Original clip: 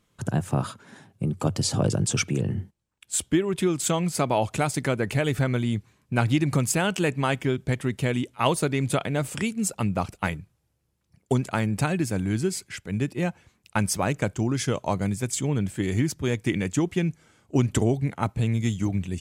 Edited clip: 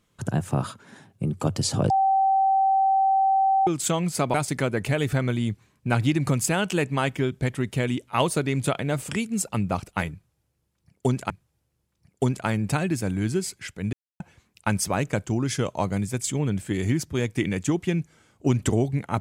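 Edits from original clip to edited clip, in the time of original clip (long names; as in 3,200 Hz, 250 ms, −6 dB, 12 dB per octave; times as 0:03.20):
0:01.90–0:03.67: beep over 774 Hz −17 dBFS
0:04.34–0:04.60: remove
0:10.39–0:11.56: repeat, 2 plays
0:13.02–0:13.29: silence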